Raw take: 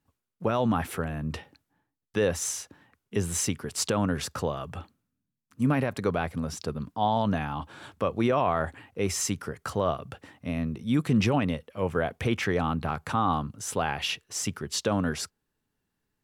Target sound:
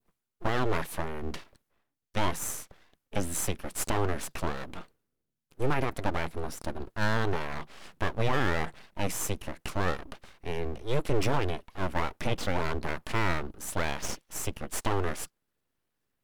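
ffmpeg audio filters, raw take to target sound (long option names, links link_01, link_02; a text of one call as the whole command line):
ffmpeg -i in.wav -filter_complex "[0:a]adynamicequalizer=threshold=0.00708:dfrequency=2200:dqfactor=1.3:tfrequency=2200:tqfactor=1.3:attack=5:release=100:ratio=0.375:range=2:mode=cutabove:tftype=bell,acrossover=split=6900[link_01][link_02];[link_01]aeval=exprs='abs(val(0))':channel_layout=same[link_03];[link_03][link_02]amix=inputs=2:normalize=0" out.wav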